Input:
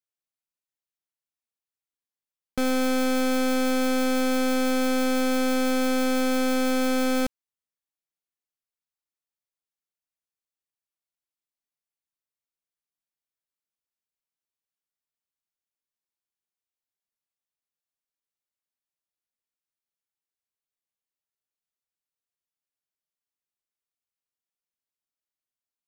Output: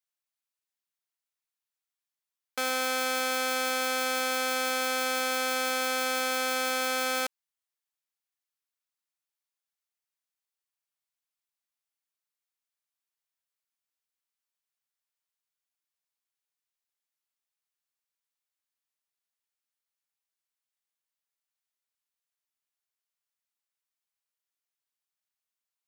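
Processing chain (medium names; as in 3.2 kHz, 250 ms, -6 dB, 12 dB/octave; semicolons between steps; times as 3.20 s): high-pass 790 Hz 12 dB/octave; trim +2 dB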